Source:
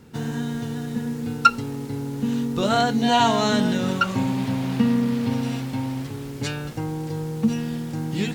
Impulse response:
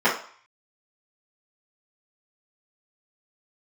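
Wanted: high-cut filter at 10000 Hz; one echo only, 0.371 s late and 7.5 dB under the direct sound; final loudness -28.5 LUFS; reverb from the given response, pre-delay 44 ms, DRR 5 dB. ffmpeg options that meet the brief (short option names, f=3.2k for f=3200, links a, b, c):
-filter_complex "[0:a]lowpass=10k,aecho=1:1:371:0.422,asplit=2[a][b];[1:a]atrim=start_sample=2205,adelay=44[c];[b][c]afir=irnorm=-1:irlink=0,volume=-24.5dB[d];[a][d]amix=inputs=2:normalize=0,volume=-7dB"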